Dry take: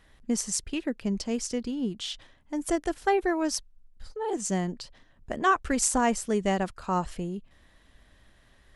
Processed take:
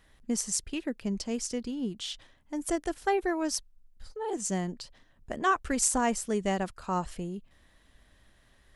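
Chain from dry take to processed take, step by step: treble shelf 7.6 kHz +5 dB; trim -3 dB

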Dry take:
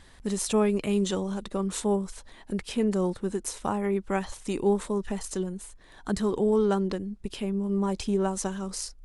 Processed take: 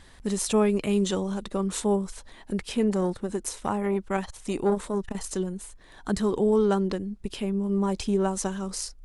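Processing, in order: 2.90–5.15 s: transformer saturation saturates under 390 Hz; trim +1.5 dB

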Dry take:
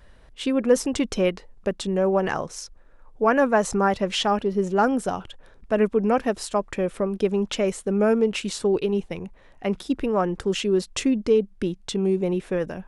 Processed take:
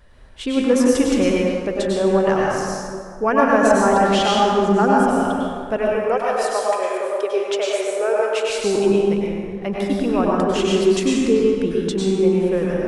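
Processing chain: 5.76–8.50 s: steep high-pass 410 Hz 36 dB/octave; plate-style reverb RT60 2 s, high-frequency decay 0.55×, pre-delay 85 ms, DRR -4.5 dB

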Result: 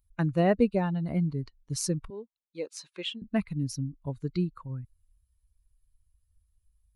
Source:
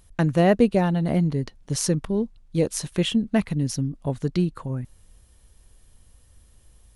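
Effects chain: expander on every frequency bin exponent 1.5; 2.10–3.22 s: band-pass 550–5400 Hz; trim -4.5 dB

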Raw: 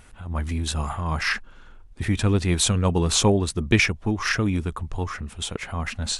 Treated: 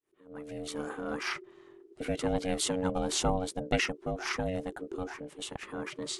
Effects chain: fade-in on the opening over 0.90 s; ring modulator 370 Hz; trim -7 dB

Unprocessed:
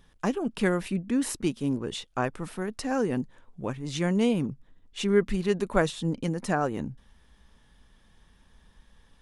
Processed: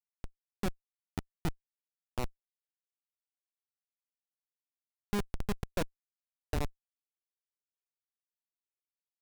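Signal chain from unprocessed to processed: level-controlled noise filter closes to 2.8 kHz, open at -20 dBFS; spring tank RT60 3.1 s, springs 30/42 ms, chirp 70 ms, DRR 20 dB; Schmitt trigger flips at -19.5 dBFS

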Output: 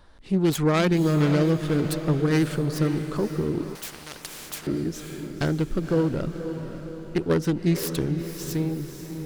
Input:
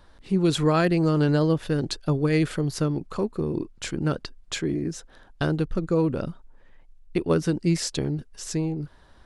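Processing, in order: self-modulated delay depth 0.21 ms; echo that smears into a reverb 540 ms, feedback 53%, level -9 dB; 3.75–4.67 s: spectrum-flattening compressor 4:1

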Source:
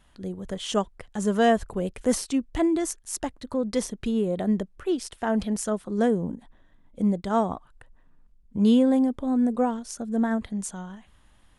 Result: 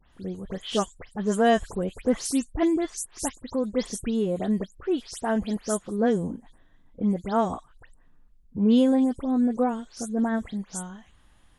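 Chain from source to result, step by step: delay that grows with frequency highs late, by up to 121 ms

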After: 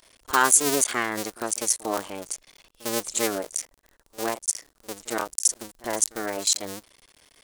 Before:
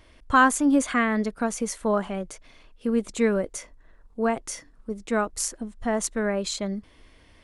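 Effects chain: cycle switcher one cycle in 2, muted; tone controls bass -13 dB, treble +14 dB; pre-echo 52 ms -19.5 dB

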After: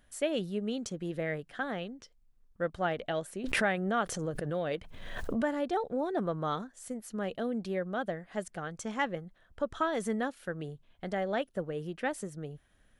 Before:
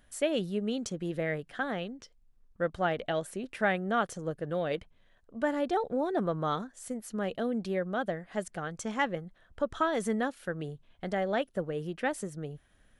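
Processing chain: 3.44–5.59 s: swell ahead of each attack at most 34 dB/s; trim -2 dB

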